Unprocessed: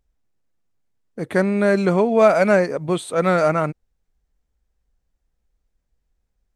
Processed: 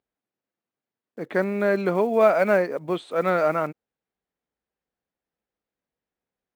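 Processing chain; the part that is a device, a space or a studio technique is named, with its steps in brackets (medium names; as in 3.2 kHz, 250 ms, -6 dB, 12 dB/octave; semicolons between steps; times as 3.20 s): early digital voice recorder (band-pass 230–3500 Hz; block-companded coder 7-bit); trim -3.5 dB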